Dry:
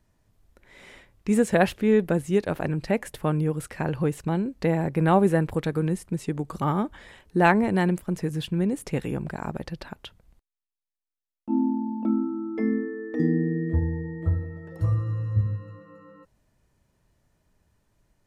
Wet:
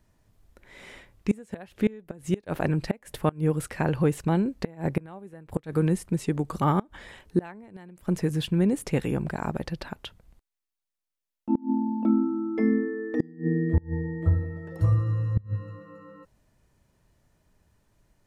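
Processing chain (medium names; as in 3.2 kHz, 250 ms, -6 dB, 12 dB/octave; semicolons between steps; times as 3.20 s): inverted gate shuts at -14 dBFS, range -26 dB; trim +2 dB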